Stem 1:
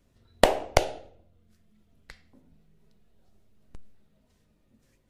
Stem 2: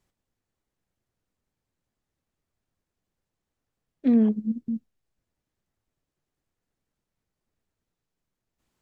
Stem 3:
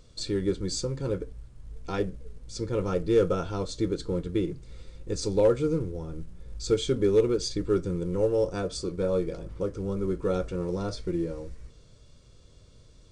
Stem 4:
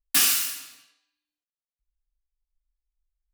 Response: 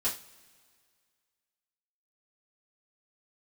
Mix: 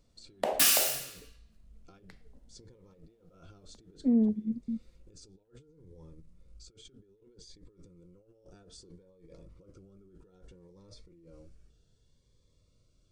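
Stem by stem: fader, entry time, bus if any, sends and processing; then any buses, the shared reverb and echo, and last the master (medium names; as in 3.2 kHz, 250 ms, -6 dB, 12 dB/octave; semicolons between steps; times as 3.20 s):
-4.0 dB, 0.00 s, no send, peak limiter -12.5 dBFS, peak gain reduction 8 dB; rippled Chebyshev high-pass 160 Hz, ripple 6 dB
-5.0 dB, 0.00 s, no send, boxcar filter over 30 samples
-19.5 dB, 0.00 s, no send, hum notches 60/120 Hz; compressor with a negative ratio -36 dBFS, ratio -1; Shepard-style phaser rising 0.63 Hz
-3.5 dB, 0.45 s, no send, none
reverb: none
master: none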